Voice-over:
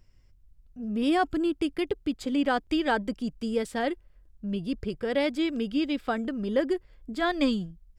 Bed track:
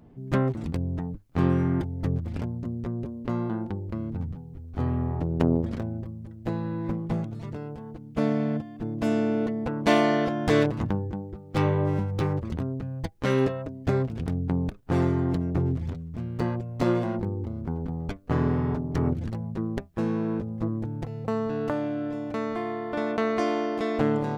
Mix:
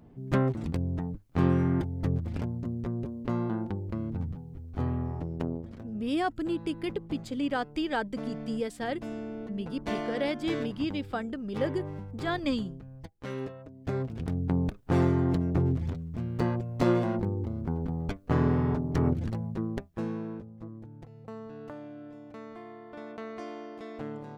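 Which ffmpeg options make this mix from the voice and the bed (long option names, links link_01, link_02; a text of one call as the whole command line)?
ffmpeg -i stem1.wav -i stem2.wav -filter_complex "[0:a]adelay=5050,volume=-4.5dB[link_01];[1:a]volume=11dB,afade=type=out:start_time=4.63:duration=0.97:silence=0.266073,afade=type=in:start_time=13.64:duration=0.96:silence=0.237137,afade=type=out:start_time=19.33:duration=1.19:silence=0.199526[link_02];[link_01][link_02]amix=inputs=2:normalize=0" out.wav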